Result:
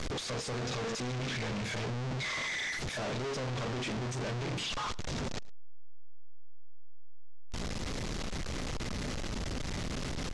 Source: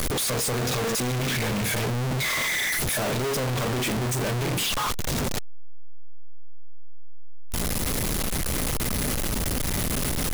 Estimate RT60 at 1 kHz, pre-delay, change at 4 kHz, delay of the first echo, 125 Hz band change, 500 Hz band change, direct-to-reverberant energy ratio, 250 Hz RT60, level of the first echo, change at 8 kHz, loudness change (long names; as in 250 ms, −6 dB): no reverb audible, no reverb audible, −9.0 dB, 110 ms, −9.0 dB, −9.0 dB, no reverb audible, no reverb audible, −23.0 dB, −15.5 dB, −10.5 dB